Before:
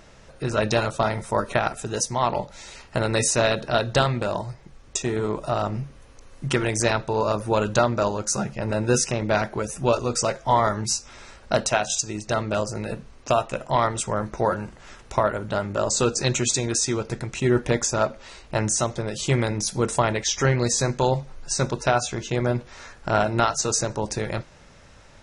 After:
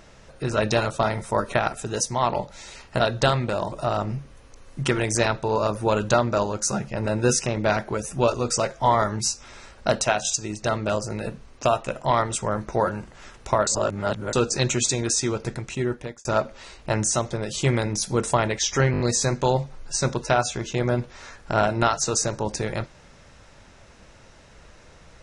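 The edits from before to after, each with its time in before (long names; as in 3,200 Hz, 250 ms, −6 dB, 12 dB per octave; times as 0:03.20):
0:03.00–0:03.73: remove
0:04.45–0:05.37: remove
0:15.32–0:15.98: reverse
0:17.16–0:17.90: fade out
0:20.57: stutter 0.02 s, 5 plays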